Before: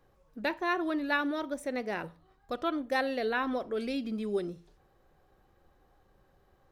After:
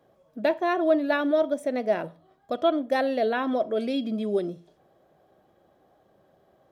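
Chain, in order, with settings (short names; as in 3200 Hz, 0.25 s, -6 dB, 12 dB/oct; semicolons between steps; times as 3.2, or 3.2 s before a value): HPF 210 Hz 12 dB/oct; low shelf 360 Hz +11.5 dB; small resonant body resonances 640/3300 Hz, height 16 dB, ringing for 55 ms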